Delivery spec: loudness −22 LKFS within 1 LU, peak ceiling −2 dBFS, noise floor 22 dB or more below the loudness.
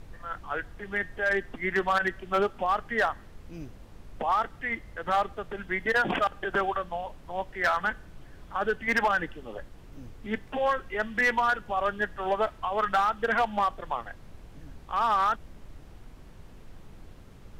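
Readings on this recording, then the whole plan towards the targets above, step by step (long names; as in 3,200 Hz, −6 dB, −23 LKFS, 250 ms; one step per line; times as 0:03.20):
share of clipped samples 0.7%; peaks flattened at −18.0 dBFS; background noise floor −49 dBFS; target noise floor −51 dBFS; integrated loudness −28.5 LKFS; sample peak −18.0 dBFS; target loudness −22.0 LKFS
→ clipped peaks rebuilt −18 dBFS
noise reduction from a noise print 6 dB
level +6.5 dB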